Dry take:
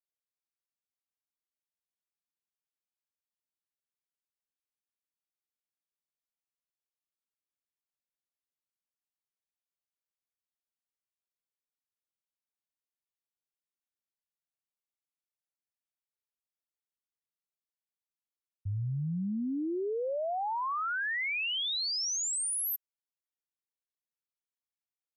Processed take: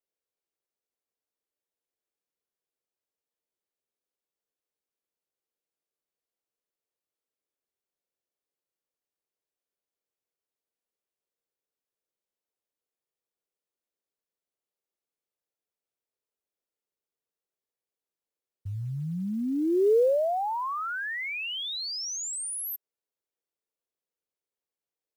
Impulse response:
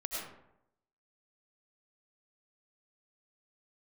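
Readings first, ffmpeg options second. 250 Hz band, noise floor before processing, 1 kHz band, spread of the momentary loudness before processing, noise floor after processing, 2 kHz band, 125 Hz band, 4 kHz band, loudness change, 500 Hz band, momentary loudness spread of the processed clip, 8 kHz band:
+5.0 dB, below −85 dBFS, +3.0 dB, 5 LU, below −85 dBFS, −0.5 dB, 0.0 dB, −1.0 dB, +3.0 dB, +10.5 dB, 12 LU, −1.5 dB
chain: -af "acontrast=53,equalizer=frequency=450:width=1.1:gain=14,acrusher=bits=9:mode=log:mix=0:aa=0.000001,volume=-7.5dB"

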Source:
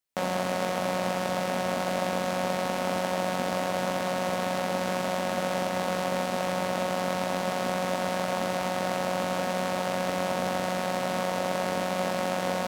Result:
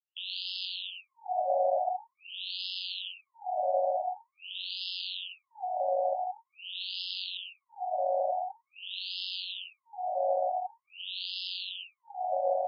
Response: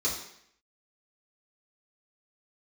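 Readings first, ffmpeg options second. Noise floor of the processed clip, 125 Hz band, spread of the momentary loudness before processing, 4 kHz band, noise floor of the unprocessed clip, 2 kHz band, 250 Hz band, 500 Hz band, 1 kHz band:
−85 dBFS, below −40 dB, 0 LU, +2.0 dB, −31 dBFS, −14.0 dB, below −40 dB, −5.0 dB, −3.5 dB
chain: -af "asuperstop=centerf=1500:order=20:qfactor=0.76,asubboost=boost=7.5:cutoff=190,afftfilt=real='re*between(b*sr/1024,720*pow(3700/720,0.5+0.5*sin(2*PI*0.46*pts/sr))/1.41,720*pow(3700/720,0.5+0.5*sin(2*PI*0.46*pts/sr))*1.41)':imag='im*between(b*sr/1024,720*pow(3700/720,0.5+0.5*sin(2*PI*0.46*pts/sr))/1.41,720*pow(3700/720,0.5+0.5*sin(2*PI*0.46*pts/sr))*1.41)':win_size=1024:overlap=0.75,volume=7.5dB"

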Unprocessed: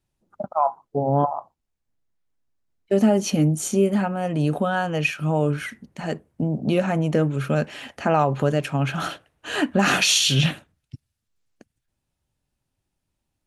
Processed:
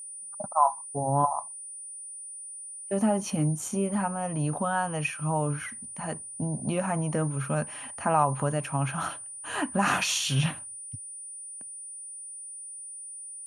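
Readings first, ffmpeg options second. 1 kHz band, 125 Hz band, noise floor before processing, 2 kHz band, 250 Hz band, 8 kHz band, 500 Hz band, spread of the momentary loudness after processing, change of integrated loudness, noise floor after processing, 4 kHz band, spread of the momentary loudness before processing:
−1.5 dB, −6.0 dB, −80 dBFS, −6.5 dB, −7.5 dB, −1.5 dB, −8.5 dB, 13 LU, −7.5 dB, −42 dBFS, −10.0 dB, 13 LU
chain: -af "aeval=exprs='val(0)+0.0282*sin(2*PI*9300*n/s)':channel_layout=same,equalizer=frequency=100:width_type=o:width=0.67:gain=7,equalizer=frequency=400:width_type=o:width=0.67:gain=-5,equalizer=frequency=1000:width_type=o:width=0.67:gain=10,equalizer=frequency=4000:width_type=o:width=0.67:gain=-5,volume=-7.5dB"

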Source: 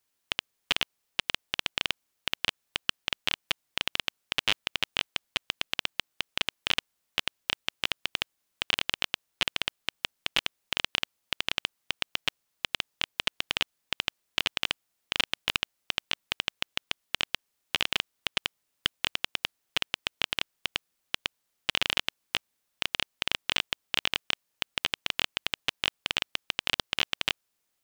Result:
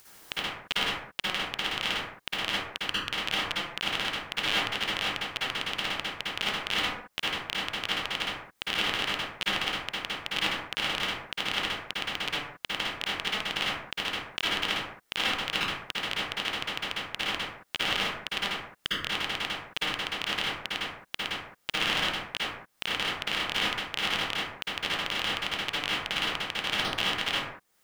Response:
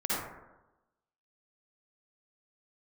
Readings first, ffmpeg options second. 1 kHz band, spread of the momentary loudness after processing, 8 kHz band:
+6.0 dB, 6 LU, 0.0 dB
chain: -filter_complex "[0:a]acompressor=mode=upward:threshold=-32dB:ratio=2.5[link_01];[1:a]atrim=start_sample=2205,afade=type=out:start_time=0.33:duration=0.01,atrim=end_sample=14994[link_02];[link_01][link_02]afir=irnorm=-1:irlink=0,volume=-4dB"

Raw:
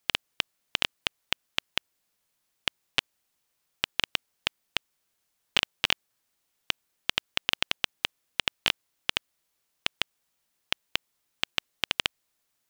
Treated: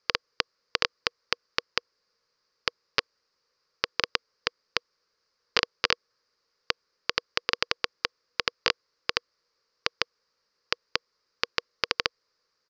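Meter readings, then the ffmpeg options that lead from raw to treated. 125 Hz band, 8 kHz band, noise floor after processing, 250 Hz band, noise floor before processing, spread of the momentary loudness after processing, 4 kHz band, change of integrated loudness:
−1.5 dB, −2.0 dB, −78 dBFS, 0.0 dB, −77 dBFS, 6 LU, −1.5 dB, +0.5 dB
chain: -af "firequalizer=gain_entry='entry(300,0);entry(480,15);entry(710,-4);entry(1100,10);entry(3300,-5);entry(4800,14);entry(8800,-26)':delay=0.05:min_phase=1,volume=-1.5dB"

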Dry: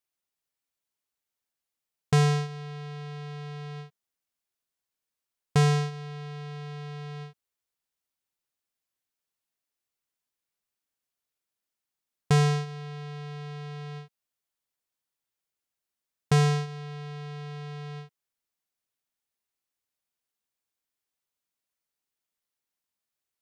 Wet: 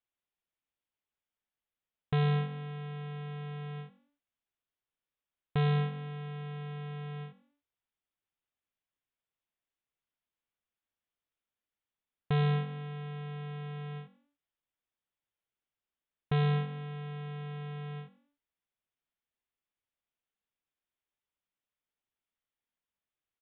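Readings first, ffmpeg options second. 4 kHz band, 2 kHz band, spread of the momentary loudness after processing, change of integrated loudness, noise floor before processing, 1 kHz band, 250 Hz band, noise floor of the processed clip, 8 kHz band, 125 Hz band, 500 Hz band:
−7.5 dB, −6.0 dB, 14 LU, −5.5 dB, below −85 dBFS, −6.0 dB, −4.5 dB, below −85 dBFS, below −35 dB, −5.0 dB, −6.0 dB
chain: -filter_complex "[0:a]lowshelf=frequency=84:gain=6,aresample=8000,volume=23dB,asoftclip=hard,volume=-23dB,aresample=44100,asplit=4[link_01][link_02][link_03][link_04];[link_02]adelay=97,afreqshift=46,volume=-20dB[link_05];[link_03]adelay=194,afreqshift=92,volume=-29.4dB[link_06];[link_04]adelay=291,afreqshift=138,volume=-38.7dB[link_07];[link_01][link_05][link_06][link_07]amix=inputs=4:normalize=0,volume=-3dB"

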